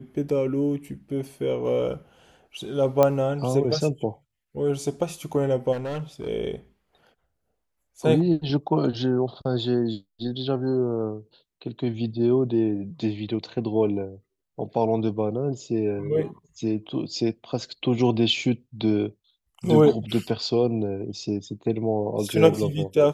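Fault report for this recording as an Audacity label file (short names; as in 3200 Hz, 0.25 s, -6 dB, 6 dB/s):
3.030000	3.030000	pop -7 dBFS
5.720000	6.280000	clipped -27 dBFS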